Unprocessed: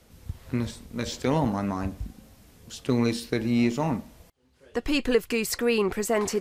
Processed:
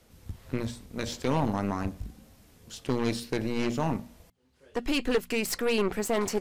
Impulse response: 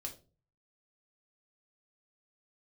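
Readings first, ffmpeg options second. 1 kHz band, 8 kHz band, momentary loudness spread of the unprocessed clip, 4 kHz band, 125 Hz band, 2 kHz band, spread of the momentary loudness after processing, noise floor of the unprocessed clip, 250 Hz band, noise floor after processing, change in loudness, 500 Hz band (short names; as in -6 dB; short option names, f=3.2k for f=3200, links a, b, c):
-1.0 dB, -2.5 dB, 11 LU, -1.5 dB, -3.0 dB, -2.5 dB, 11 LU, -58 dBFS, -4.0 dB, -61 dBFS, -3.0 dB, -3.0 dB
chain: -af "aeval=exprs='0.376*(cos(1*acos(clip(val(0)/0.376,-1,1)))-cos(1*PI/2))+0.106*(cos(5*acos(clip(val(0)/0.376,-1,1)))-cos(5*PI/2))+0.0422*(cos(7*acos(clip(val(0)/0.376,-1,1)))-cos(7*PI/2))+0.0473*(cos(8*acos(clip(val(0)/0.376,-1,1)))-cos(8*PI/2))':c=same,bandreject=f=60:t=h:w=6,bandreject=f=120:t=h:w=6,bandreject=f=180:t=h:w=6,bandreject=f=240:t=h:w=6,volume=-7dB"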